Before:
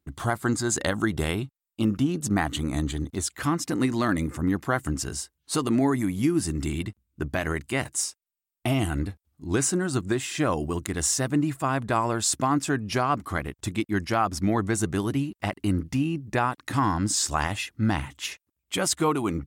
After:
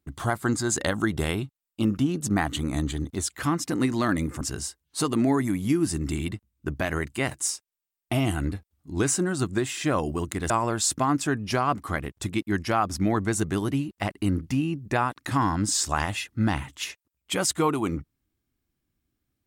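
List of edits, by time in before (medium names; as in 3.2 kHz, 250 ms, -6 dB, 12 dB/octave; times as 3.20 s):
4.41–4.95 s: delete
11.04–11.92 s: delete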